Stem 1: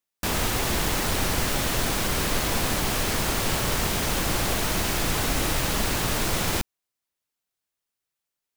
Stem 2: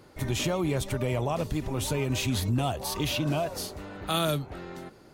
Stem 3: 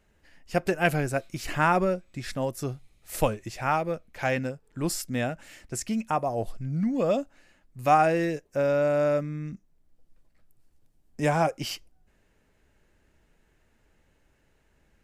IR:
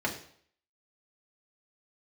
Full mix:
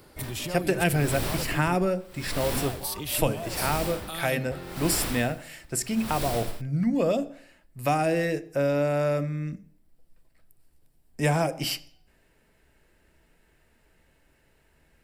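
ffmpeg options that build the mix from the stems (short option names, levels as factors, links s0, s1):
-filter_complex "[0:a]aeval=exprs='val(0)*pow(10,-33*(0.5-0.5*cos(2*PI*0.8*n/s))/20)':c=same,volume=0.596[s0];[1:a]alimiter=level_in=1.12:limit=0.0631:level=0:latency=1:release=192,volume=0.891,crystalizer=i=1.5:c=0,volume=0.944,asplit=3[s1][s2][s3];[s1]atrim=end=1.75,asetpts=PTS-STARTPTS,afade=t=out:st=1.746:d=0.004:c=hsin[s4];[s2]atrim=start=1.75:end=2.53,asetpts=PTS-STARTPTS,volume=0[s5];[s3]atrim=start=2.53,asetpts=PTS-STARTPTS,afade=t=in:d=0.004:c=hsin[s6];[s4][s5][s6]concat=n=3:v=0:a=1[s7];[2:a]highshelf=f=4500:g=7,volume=1.12,asplit=2[s8][s9];[s9]volume=0.158[s10];[3:a]atrim=start_sample=2205[s11];[s10][s11]afir=irnorm=-1:irlink=0[s12];[s0][s7][s8][s12]amix=inputs=4:normalize=0,equalizer=f=6500:w=5.2:g=-8.5,acrossover=split=430|3000[s13][s14][s15];[s14]acompressor=threshold=0.0501:ratio=6[s16];[s13][s16][s15]amix=inputs=3:normalize=0"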